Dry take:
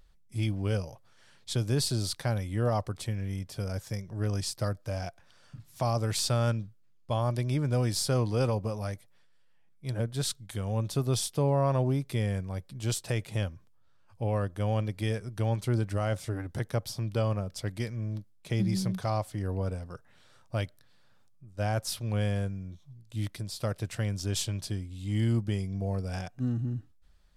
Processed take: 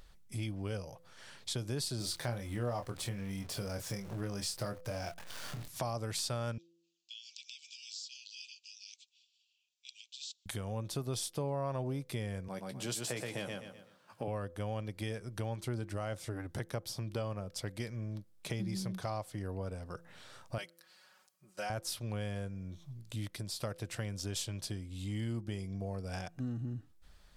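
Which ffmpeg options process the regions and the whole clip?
-filter_complex "[0:a]asettb=1/sr,asplit=3[a][b][c];[a]atrim=end=1.984[d];[b]atrim=start=1.98:end=5.68,asetpts=PTS-STARTPTS,afade=t=in:d=0.004:c=qsin,afade=t=out:st=3.696:d=0.004:c=qsin,aeval=exprs='val(0)+0.5*0.00596*sgn(val(0))':c=same,asplit=2[e][f];[f]adelay=25,volume=-6dB[g];[e][g]amix=inputs=2:normalize=0,atrim=end_sample=163170[h];[c]atrim=start=5.676[i];[d][h]acrossfade=d=0.004:c1=hsin:c2=qsin[j];[j][i]acrossfade=d=0.004:c1=qsin:c2=hsin,asettb=1/sr,asplit=3[k][l][m];[k]atrim=end=6.584[n];[l]atrim=start=6.58:end=10.46,asetpts=PTS-STARTPTS,afade=t=in:d=0.004:c=qsin,afade=t=out:st=3.876:d=0.004:c=qsin,asuperpass=centerf=4500:order=20:qfactor=0.88,acompressor=threshold=-56dB:ratio=2.5:attack=3.2:release=140:knee=1:detection=peak[o];[m]atrim=start=10.456[p];[n][o]acrossfade=d=0.004:c1=hsin:c2=qsin[q];[q][p]acrossfade=d=0.004:c1=qsin:c2=hsin,asettb=1/sr,asplit=3[r][s][t];[r]atrim=end=12.484[u];[s]atrim=start=12.48:end=14.28,asetpts=PTS-STARTPTS,afade=t=in:d=0.004:c=qsin,afade=t=out:st=1.796:d=0.004:c=qsin,highpass=f=150:w=0.5412,highpass=f=150:w=1.3066,asplit=2[v][w];[w]adelay=16,volume=-11dB[x];[v][x]amix=inputs=2:normalize=0,atrim=end_sample=79380,aecho=1:1:124|248|372|496:0.668|0.174|0.0452|0.0117,atrim=end_sample=79380[y];[t]atrim=start=14.276[z];[u][y]acrossfade=d=0.004:c1=hsin:c2=qsin[aa];[aa][z]acrossfade=d=0.004:c1=qsin:c2=hsin,asettb=1/sr,asplit=3[ab][ac][ad];[ab]atrim=end=20.584[ae];[ac]atrim=start=20.58:end=21.7,asetpts=PTS-STARTPTS,afade=t=in:d=0.004:c=qsin,afade=t=out:st=1.116:d=0.004:c=qsin,highpass=f=1.2k:p=1,bandreject=f=3.6k:w=8.6,aecho=1:1:5.4:0.87,atrim=end_sample=49392[af];[ad]atrim=start=21.696[ag];[ae][af]acrossfade=d=0.004:c1=hsin:c2=qsin[ah];[ah][ag]acrossfade=d=0.004:c1=qsin:c2=hsin,lowshelf=f=190:g=-5.5,bandreject=f=169.2:t=h:w=4,bandreject=f=338.4:t=h:w=4,bandreject=f=507.6:t=h:w=4,acompressor=threshold=-49dB:ratio=2.5,volume=7.5dB"

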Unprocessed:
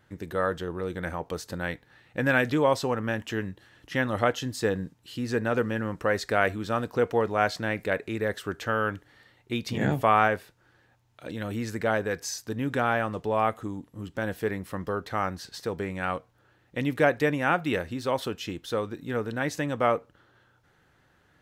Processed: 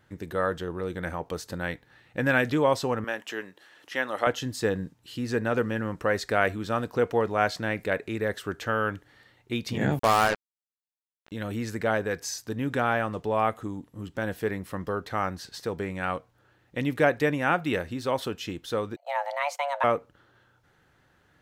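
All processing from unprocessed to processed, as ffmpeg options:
-filter_complex "[0:a]asettb=1/sr,asplit=3[a][b][c];[a]atrim=end=3.044[d];[b]atrim=start=3.04:end=4.27,asetpts=PTS-STARTPTS,afade=t=in:d=0.004:c=qsin,afade=t=out:st=1.226:d=0.004:c=qsin,highpass=430,acompressor=mode=upward:threshold=-48dB:ratio=2.5:attack=3.2:release=140:knee=2.83:detection=peak[e];[c]atrim=start=4.266[f];[d][e]acrossfade=d=0.004:c1=hsin:c2=qsin[g];[g][f]acrossfade=d=0.004:c1=qsin:c2=hsin,asettb=1/sr,asplit=3[h][i][j];[h]atrim=end=9.994[k];[i]atrim=start=9.99:end=11.32,asetpts=PTS-STARTPTS,afade=t=in:d=0.004:c=qsin,afade=t=out:st=1.326:d=0.004:c=qsin,highshelf=f=3.2k:g=-9,acrusher=bits=3:mix=0:aa=0.5[l];[j]atrim=start=11.316[m];[k][l]acrossfade=d=0.004:c1=hsin:c2=qsin[n];[n][m]acrossfade=d=0.004:c1=qsin:c2=hsin,asettb=1/sr,asplit=3[o][p][q];[o]atrim=end=18.964[r];[p]atrim=start=18.96:end=19.84,asetpts=PTS-STARTPTS,afade=t=in:d=0.004:c=qsin,afade=t=out:st=0.876:d=0.004:c=qsin,agate=range=-19dB:threshold=-40dB:ratio=16:release=100:detection=peak,highshelf=f=4.8k:g=-4,afreqshift=420[s];[q]atrim=start=19.836[t];[r][s]acrossfade=d=0.004:c1=hsin:c2=qsin[u];[u][t]acrossfade=d=0.004:c1=qsin:c2=hsin"

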